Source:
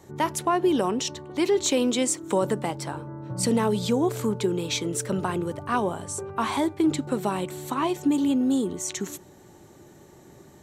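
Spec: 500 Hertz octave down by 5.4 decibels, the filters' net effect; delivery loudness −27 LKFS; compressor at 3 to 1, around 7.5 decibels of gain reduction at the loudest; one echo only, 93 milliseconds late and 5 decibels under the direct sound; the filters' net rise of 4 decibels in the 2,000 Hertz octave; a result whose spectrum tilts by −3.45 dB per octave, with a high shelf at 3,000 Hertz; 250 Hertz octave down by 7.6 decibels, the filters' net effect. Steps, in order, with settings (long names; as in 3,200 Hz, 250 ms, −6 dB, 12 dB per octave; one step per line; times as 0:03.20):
parametric band 250 Hz −8.5 dB
parametric band 500 Hz −4 dB
parametric band 2,000 Hz +6.5 dB
high-shelf EQ 3,000 Hz −3 dB
downward compressor 3 to 1, threshold −30 dBFS
single-tap delay 93 ms −5 dB
level +5.5 dB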